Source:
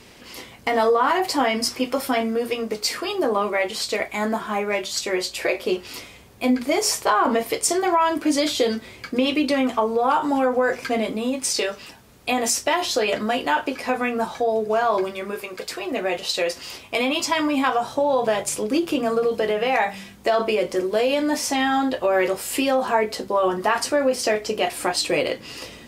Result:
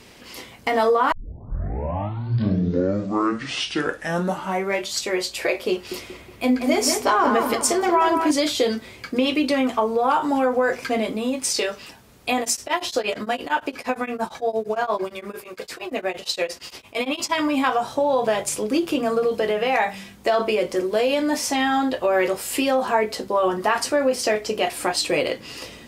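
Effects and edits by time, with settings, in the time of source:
1.12 tape start 3.76 s
5.73–8.31 dark delay 0.184 s, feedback 44%, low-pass 2300 Hz, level -5 dB
12.4–17.38 beating tremolo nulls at 8.7 Hz

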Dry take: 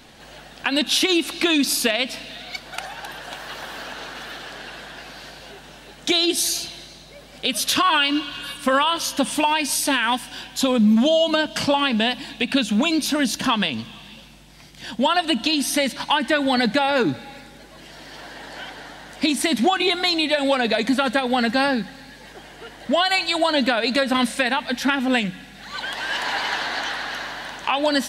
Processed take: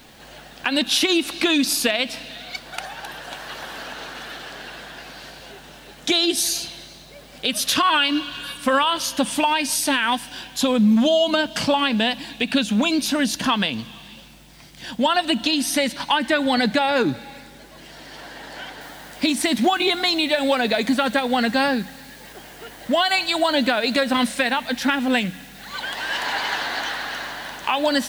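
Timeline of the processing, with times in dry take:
18.81 noise floor step -59 dB -49 dB

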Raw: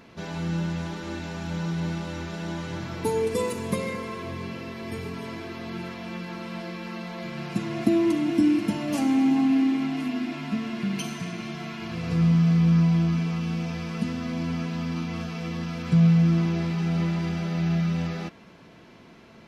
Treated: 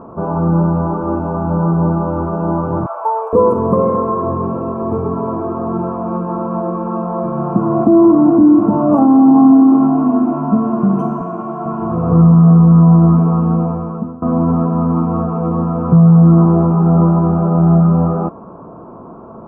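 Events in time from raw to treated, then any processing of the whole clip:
2.86–3.33 elliptic high-pass 610 Hz, stop band 70 dB
11.21–11.66 HPF 400 Hz 6 dB/oct
13.56–14.22 fade out, to -22 dB
whole clip: elliptic low-pass 1200 Hz, stop band 40 dB; low shelf 440 Hz -7.5 dB; maximiser +22.5 dB; gain -1 dB

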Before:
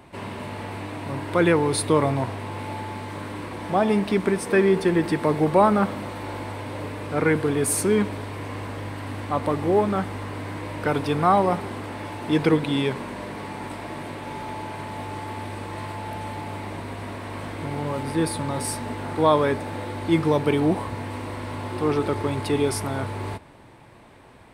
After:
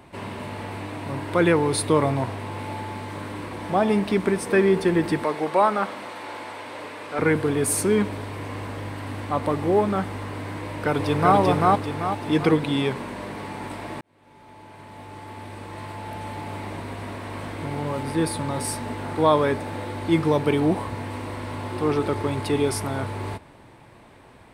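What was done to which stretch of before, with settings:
5.24–7.19 weighting filter A
10.6–11.36 echo throw 0.39 s, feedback 40%, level -0.5 dB
14.01–16.6 fade in

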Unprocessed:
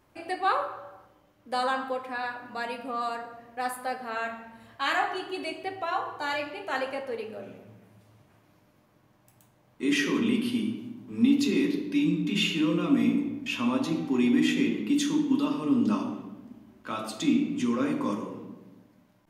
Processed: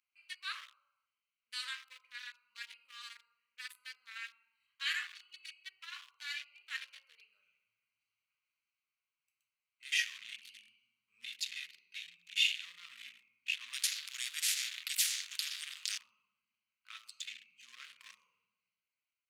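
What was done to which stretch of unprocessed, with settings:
13.73–15.98 spectral compressor 10:1
whole clip: Wiener smoothing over 25 samples; inverse Chebyshev high-pass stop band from 780 Hz, stop band 50 dB

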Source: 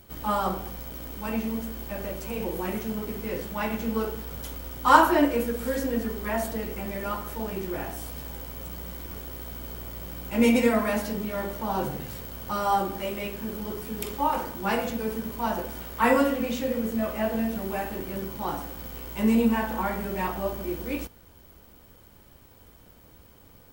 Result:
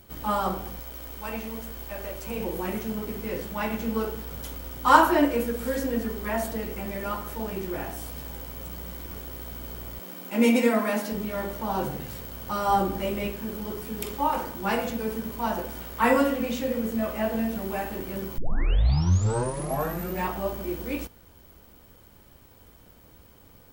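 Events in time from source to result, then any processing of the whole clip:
0.8–2.27 bell 180 Hz -9.5 dB 1.6 oct
9.99–11.12 brick-wall FIR high-pass 160 Hz
12.68–13.32 low shelf 390 Hz +6.5 dB
18.38 tape start 1.87 s

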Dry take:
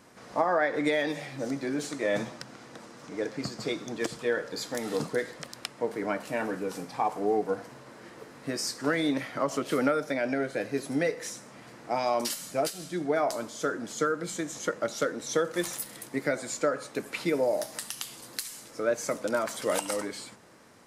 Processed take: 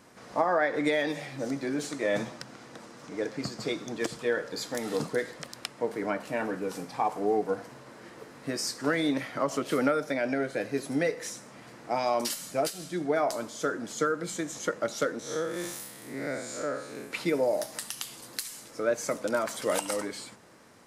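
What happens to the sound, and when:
6.1–6.63 high shelf 5100 Hz -4.5 dB
15.19–17.11 time blur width 0.141 s

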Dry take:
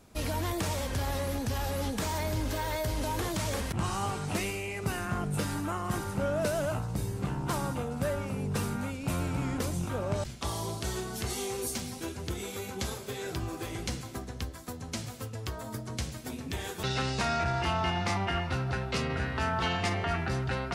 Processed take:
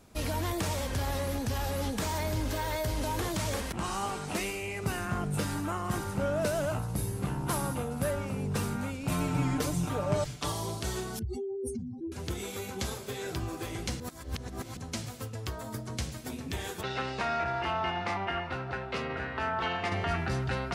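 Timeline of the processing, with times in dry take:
3.57–4.62 bell 110 Hz -12 dB
6.79–8.11 bell 11000 Hz +13 dB 0.25 oct
9.11–10.52 comb 6.7 ms, depth 80%
11.19–12.12 spectral contrast raised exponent 3.4
14–14.77 reverse
16.81–19.92 tone controls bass -9 dB, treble -13 dB

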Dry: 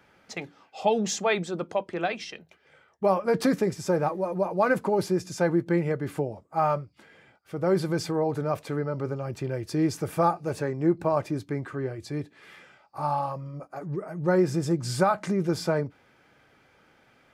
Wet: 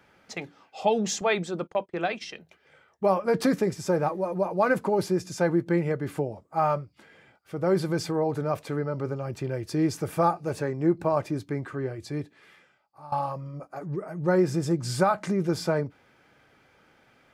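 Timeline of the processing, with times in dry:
1.21–2.24 gate -41 dBFS, range -24 dB
12.2–13.12 fade out quadratic, to -16.5 dB

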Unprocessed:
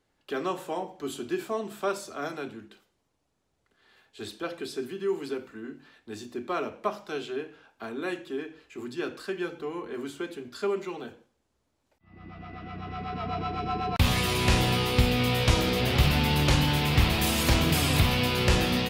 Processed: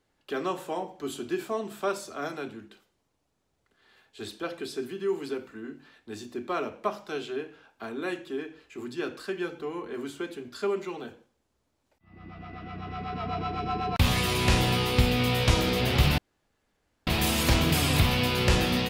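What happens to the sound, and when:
16.18–17.07 room tone

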